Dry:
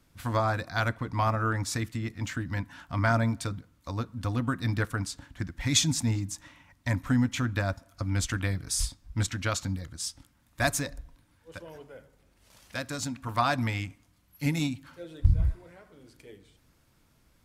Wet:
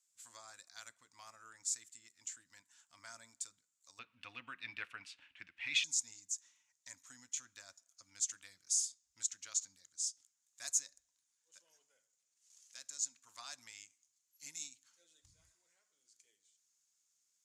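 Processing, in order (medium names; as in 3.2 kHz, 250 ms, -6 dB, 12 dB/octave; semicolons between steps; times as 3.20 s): band-pass filter 7.3 kHz, Q 5.7, from 3.99 s 2.6 kHz, from 5.84 s 6.8 kHz; trim +3.5 dB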